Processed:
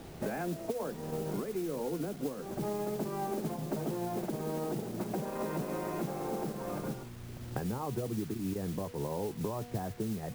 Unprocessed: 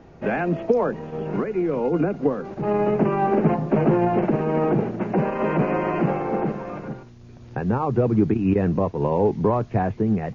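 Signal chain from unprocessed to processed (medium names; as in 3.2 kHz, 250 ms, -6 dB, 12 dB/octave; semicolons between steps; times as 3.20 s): treble shelf 2.4 kHz -10.5 dB; de-hum 241.5 Hz, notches 40; compression 8:1, threshold -33 dBFS, peak gain reduction 18.5 dB; bit crusher 9-bit; modulation noise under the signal 17 dB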